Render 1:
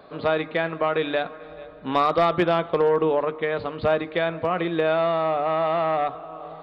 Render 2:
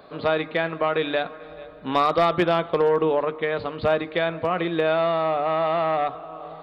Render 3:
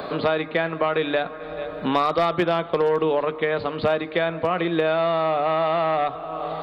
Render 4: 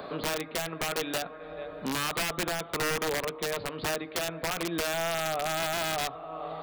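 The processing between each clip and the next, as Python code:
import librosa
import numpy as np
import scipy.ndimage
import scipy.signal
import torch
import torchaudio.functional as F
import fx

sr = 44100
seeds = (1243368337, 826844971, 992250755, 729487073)

y1 = fx.high_shelf(x, sr, hz=4400.0, db=5.0)
y2 = fx.band_squash(y1, sr, depth_pct=70)
y3 = (np.mod(10.0 ** (15.0 / 20.0) * y2 + 1.0, 2.0) - 1.0) / 10.0 ** (15.0 / 20.0)
y3 = y3 * 10.0 ** (-8.5 / 20.0)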